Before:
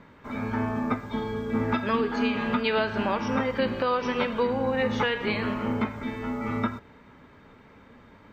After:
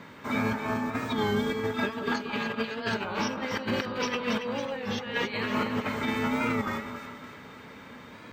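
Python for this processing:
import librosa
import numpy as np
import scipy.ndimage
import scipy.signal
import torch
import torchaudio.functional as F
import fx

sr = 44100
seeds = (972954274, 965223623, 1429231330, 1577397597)

y = scipy.signal.sosfilt(scipy.signal.butter(2, 100.0, 'highpass', fs=sr, output='sos'), x)
y = fx.high_shelf(y, sr, hz=2700.0, db=10.0)
y = fx.over_compress(y, sr, threshold_db=-30.0, ratio=-0.5)
y = fx.echo_split(y, sr, split_hz=1500.0, low_ms=180, high_ms=278, feedback_pct=52, wet_db=-7.5)
y = fx.record_warp(y, sr, rpm=33.33, depth_cents=100.0)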